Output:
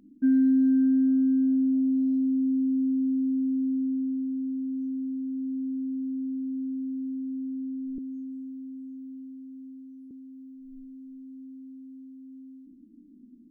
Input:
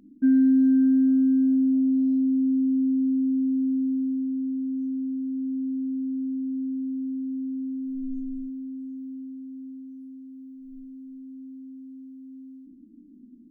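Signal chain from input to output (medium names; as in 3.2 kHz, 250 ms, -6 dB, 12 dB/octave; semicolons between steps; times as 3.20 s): 7.98–10.11 s: high-pass 240 Hz 24 dB/octave; trim -2.5 dB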